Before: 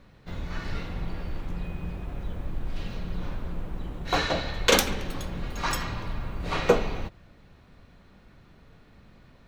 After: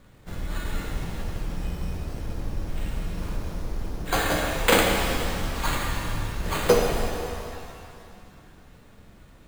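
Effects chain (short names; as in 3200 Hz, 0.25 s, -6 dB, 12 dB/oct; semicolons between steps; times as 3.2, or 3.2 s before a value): sample-and-hold 8×; shimmer reverb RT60 2.4 s, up +7 st, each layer -8 dB, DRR 1.5 dB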